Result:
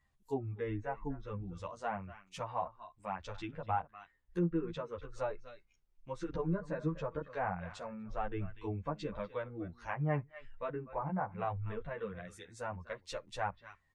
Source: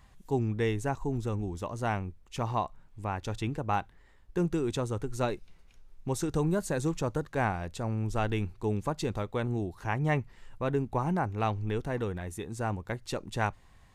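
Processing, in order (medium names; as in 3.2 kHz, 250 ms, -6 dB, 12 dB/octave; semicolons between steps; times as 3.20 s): delay 245 ms -14.5 dB; low-pass that closes with the level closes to 1.5 kHz, closed at -25.5 dBFS; spectral noise reduction 14 dB; endless flanger 10.9 ms -1 Hz; trim -2 dB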